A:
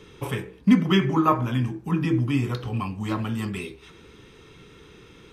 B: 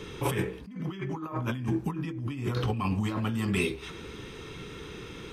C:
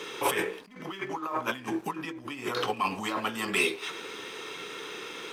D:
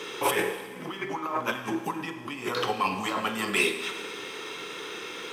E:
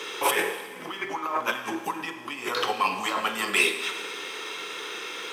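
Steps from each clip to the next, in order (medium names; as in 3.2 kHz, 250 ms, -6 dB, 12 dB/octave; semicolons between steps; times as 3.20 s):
compressor with a negative ratio -32 dBFS, ratio -1
high-pass 500 Hz 12 dB/octave; waveshaping leveller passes 1; trim +3 dB
Schroeder reverb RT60 1.5 s, combs from 32 ms, DRR 8 dB; trim +1.5 dB
high-pass 560 Hz 6 dB/octave; trim +3.5 dB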